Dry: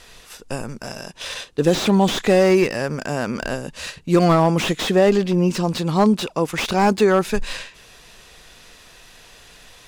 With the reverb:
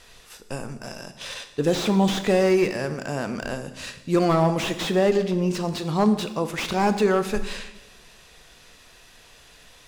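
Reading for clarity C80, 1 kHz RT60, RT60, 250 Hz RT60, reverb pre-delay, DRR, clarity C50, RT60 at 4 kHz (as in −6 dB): 14.0 dB, 1.0 s, 1.1 s, 1.3 s, 12 ms, 9.5 dB, 11.5 dB, 1.0 s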